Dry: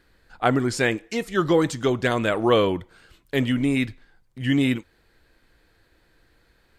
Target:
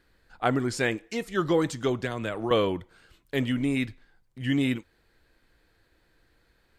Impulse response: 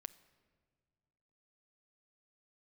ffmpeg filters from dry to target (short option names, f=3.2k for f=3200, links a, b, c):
-filter_complex "[0:a]asettb=1/sr,asplit=3[a][b][c];[a]atrim=end=2.024[d];[b]atrim=start=2.02:end=2.51,asetpts=PTS-STARTPTS,afade=t=in:d=0.004:c=qsin,afade=t=out:st=0.486:d=0.004:c=qsin,acrossover=split=130[e][f];[f]acompressor=threshold=-23dB:ratio=6[g];[e][g]amix=inputs=2:normalize=0[h];[c]atrim=start=2.506[i];[d][h]acrossfade=d=0.004:c1=hsin:c2=qsin[j];[j][i]acrossfade=d=0.004:c1=qsin:c2=hsin,volume=-4.5dB"